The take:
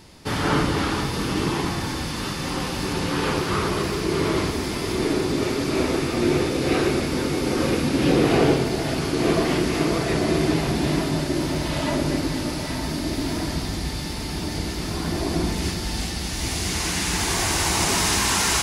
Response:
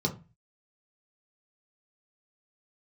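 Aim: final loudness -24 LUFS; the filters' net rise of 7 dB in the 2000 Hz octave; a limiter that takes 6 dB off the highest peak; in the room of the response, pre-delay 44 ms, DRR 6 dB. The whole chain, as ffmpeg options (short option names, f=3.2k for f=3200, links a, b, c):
-filter_complex "[0:a]equalizer=f=2k:t=o:g=8.5,alimiter=limit=-12dB:level=0:latency=1,asplit=2[a][b];[1:a]atrim=start_sample=2205,adelay=44[c];[b][c]afir=irnorm=-1:irlink=0,volume=-13dB[d];[a][d]amix=inputs=2:normalize=0,volume=-4.5dB"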